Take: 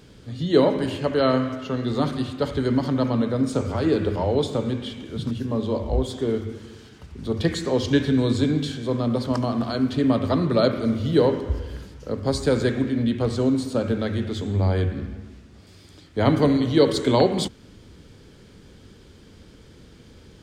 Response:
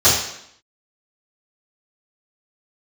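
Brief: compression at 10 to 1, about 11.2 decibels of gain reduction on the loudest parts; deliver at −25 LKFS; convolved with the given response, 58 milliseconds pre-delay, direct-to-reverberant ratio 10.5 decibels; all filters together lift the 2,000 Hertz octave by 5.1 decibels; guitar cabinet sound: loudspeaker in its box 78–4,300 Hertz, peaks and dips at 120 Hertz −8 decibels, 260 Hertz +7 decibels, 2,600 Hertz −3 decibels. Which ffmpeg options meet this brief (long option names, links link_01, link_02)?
-filter_complex "[0:a]equalizer=frequency=2000:width_type=o:gain=7,acompressor=threshold=-23dB:ratio=10,asplit=2[link_01][link_02];[1:a]atrim=start_sample=2205,adelay=58[link_03];[link_02][link_03]afir=irnorm=-1:irlink=0,volume=-33.5dB[link_04];[link_01][link_04]amix=inputs=2:normalize=0,highpass=78,equalizer=frequency=120:width_type=q:width=4:gain=-8,equalizer=frequency=260:width_type=q:width=4:gain=7,equalizer=frequency=2600:width_type=q:width=4:gain=-3,lowpass=frequency=4300:width=0.5412,lowpass=frequency=4300:width=1.3066,volume=1dB"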